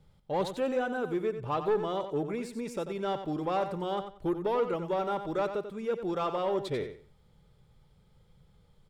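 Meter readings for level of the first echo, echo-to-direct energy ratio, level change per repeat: −9.5 dB, −9.5 dB, −13.0 dB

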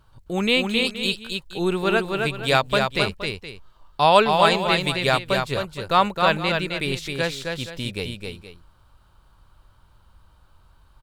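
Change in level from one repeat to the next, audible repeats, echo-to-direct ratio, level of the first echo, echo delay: repeats not evenly spaced, 2, −4.0 dB, −4.5 dB, 264 ms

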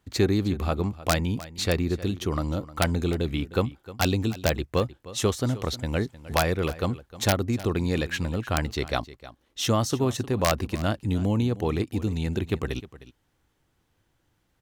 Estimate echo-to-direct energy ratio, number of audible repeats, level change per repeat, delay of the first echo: −17.0 dB, 1, repeats not evenly spaced, 308 ms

